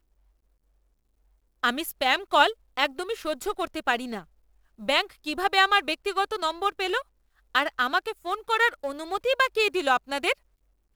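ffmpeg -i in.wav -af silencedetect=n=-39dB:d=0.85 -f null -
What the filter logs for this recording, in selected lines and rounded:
silence_start: 0.00
silence_end: 1.63 | silence_duration: 1.63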